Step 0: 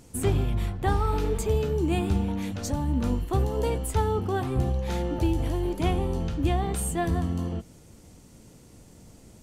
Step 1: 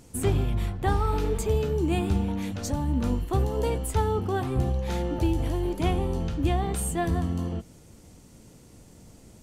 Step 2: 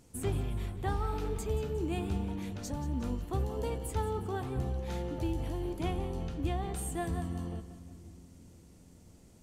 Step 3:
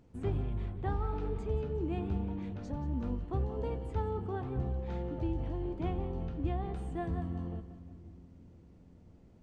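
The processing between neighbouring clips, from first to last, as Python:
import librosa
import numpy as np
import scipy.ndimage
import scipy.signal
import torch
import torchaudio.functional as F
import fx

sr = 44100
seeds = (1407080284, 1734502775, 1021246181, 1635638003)

y1 = x
y2 = fx.echo_split(y1, sr, split_hz=340.0, low_ms=503, high_ms=180, feedback_pct=52, wet_db=-13.5)
y2 = y2 * 10.0 ** (-8.5 / 20.0)
y3 = fx.spacing_loss(y2, sr, db_at_10k=30)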